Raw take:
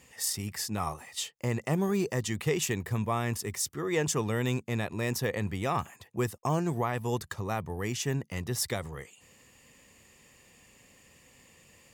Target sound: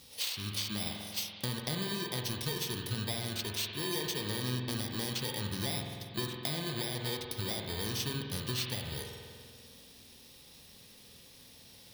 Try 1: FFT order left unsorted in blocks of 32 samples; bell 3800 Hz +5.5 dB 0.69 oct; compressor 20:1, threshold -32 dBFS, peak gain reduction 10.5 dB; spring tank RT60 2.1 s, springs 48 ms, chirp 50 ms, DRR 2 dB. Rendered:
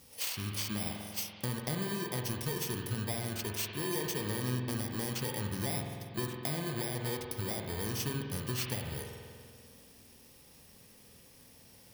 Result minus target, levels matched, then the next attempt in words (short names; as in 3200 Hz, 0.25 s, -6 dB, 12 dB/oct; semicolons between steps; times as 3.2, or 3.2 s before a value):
4000 Hz band -5.5 dB
FFT order left unsorted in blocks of 32 samples; bell 3800 Hz +17.5 dB 0.69 oct; compressor 20:1, threshold -32 dBFS, peak gain reduction 13 dB; spring tank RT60 2.1 s, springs 48 ms, chirp 50 ms, DRR 2 dB